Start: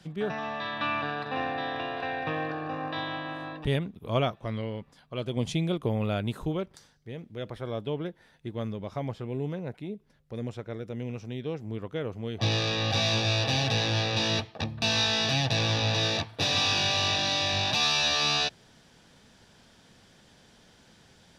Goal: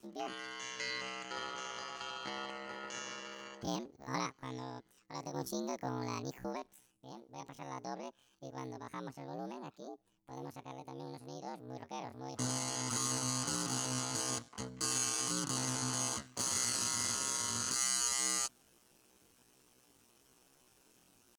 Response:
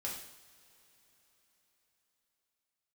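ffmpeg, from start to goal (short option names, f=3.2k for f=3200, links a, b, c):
-af "aeval=exprs='val(0)*sin(2*PI*37*n/s)':c=same,aemphasis=mode=production:type=cd,asetrate=76340,aresample=44100,atempo=0.577676,volume=-8dB"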